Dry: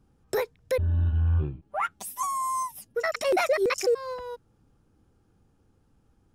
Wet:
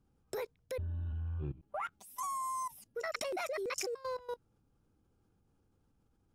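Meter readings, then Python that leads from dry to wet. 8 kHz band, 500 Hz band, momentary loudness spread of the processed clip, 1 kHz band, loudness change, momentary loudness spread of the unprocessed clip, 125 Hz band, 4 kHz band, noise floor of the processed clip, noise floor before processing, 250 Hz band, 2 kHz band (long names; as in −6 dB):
−7.5 dB, −13.0 dB, 6 LU, −9.5 dB, −12.0 dB, 9 LU, −13.5 dB, −8.5 dB, −74 dBFS, −66 dBFS, −12.5 dB, −11.5 dB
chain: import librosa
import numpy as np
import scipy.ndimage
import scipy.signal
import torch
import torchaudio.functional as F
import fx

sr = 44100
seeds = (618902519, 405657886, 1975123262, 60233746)

y = fx.notch(x, sr, hz=1800.0, q=15.0)
y = fx.level_steps(y, sr, step_db=18)
y = y * 10.0 ** (-1.0 / 20.0)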